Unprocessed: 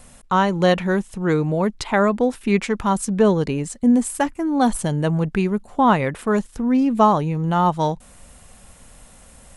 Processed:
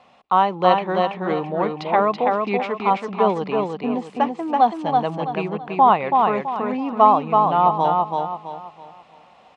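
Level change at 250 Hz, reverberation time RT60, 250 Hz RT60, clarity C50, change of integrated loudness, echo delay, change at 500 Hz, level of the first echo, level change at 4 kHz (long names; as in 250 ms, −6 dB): −7.0 dB, no reverb audible, no reverb audible, no reverb audible, 0.0 dB, 330 ms, 0.0 dB, −3.5 dB, −1.5 dB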